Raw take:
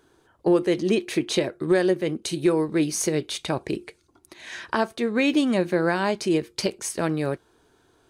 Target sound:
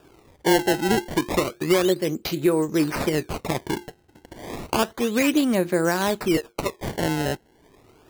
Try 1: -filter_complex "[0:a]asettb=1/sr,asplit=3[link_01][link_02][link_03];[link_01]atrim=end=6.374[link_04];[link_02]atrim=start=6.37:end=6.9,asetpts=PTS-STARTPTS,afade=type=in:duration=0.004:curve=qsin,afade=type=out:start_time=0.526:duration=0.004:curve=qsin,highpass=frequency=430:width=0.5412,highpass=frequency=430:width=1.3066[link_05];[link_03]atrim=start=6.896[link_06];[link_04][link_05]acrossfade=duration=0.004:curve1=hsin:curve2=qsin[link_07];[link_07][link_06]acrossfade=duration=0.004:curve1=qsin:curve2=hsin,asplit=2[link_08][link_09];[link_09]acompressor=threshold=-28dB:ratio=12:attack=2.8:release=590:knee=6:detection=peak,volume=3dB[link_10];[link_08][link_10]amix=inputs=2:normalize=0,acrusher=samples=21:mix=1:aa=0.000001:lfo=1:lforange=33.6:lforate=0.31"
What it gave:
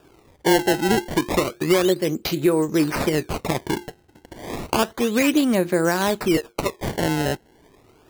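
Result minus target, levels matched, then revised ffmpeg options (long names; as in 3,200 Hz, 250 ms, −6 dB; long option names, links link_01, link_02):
downward compressor: peak gain reduction −10.5 dB
-filter_complex "[0:a]asettb=1/sr,asplit=3[link_01][link_02][link_03];[link_01]atrim=end=6.374[link_04];[link_02]atrim=start=6.37:end=6.9,asetpts=PTS-STARTPTS,afade=type=in:duration=0.004:curve=qsin,afade=type=out:start_time=0.526:duration=0.004:curve=qsin,highpass=frequency=430:width=0.5412,highpass=frequency=430:width=1.3066[link_05];[link_03]atrim=start=6.896[link_06];[link_04][link_05]acrossfade=duration=0.004:curve1=hsin:curve2=qsin[link_07];[link_07][link_06]acrossfade=duration=0.004:curve1=qsin:curve2=hsin,asplit=2[link_08][link_09];[link_09]acompressor=threshold=-39.5dB:ratio=12:attack=2.8:release=590:knee=6:detection=peak,volume=3dB[link_10];[link_08][link_10]amix=inputs=2:normalize=0,acrusher=samples=21:mix=1:aa=0.000001:lfo=1:lforange=33.6:lforate=0.31"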